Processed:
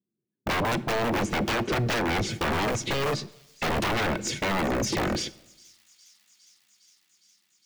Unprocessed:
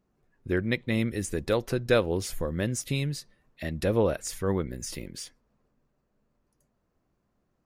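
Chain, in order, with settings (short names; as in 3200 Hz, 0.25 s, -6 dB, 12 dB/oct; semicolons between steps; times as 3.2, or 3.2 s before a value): Chebyshev band-pass 110–6500 Hz, order 3; gate -44 dBFS, range -41 dB; EQ curve 360 Hz 0 dB, 1100 Hz -17 dB, 3300 Hz -6 dB, 5100 Hz -14 dB; compressor 20:1, threshold -35 dBFS, peak gain reduction 15.5 dB; wrapped overs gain 37.5 dB; small resonant body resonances 210/330/1500/2200 Hz, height 11 dB, ringing for 45 ms; sine folder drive 12 dB, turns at -29.5 dBFS; thin delay 0.409 s, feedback 79%, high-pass 5400 Hz, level -19.5 dB; on a send at -19 dB: reverb RT60 0.90 s, pre-delay 20 ms; on the sum: gain +7 dB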